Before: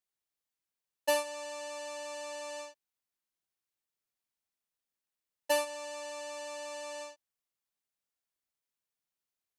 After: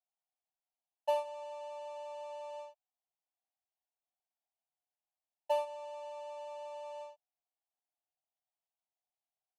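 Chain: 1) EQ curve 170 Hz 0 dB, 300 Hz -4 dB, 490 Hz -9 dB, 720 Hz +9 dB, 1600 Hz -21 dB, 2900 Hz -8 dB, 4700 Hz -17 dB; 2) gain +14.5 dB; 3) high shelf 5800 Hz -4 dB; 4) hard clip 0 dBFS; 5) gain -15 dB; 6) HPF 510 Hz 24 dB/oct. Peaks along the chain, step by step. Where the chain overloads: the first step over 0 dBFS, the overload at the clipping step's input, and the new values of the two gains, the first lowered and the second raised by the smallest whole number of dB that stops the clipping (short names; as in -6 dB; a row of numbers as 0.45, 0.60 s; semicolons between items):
-19.5, -5.0, -5.0, -5.0, -20.0, -21.0 dBFS; no overload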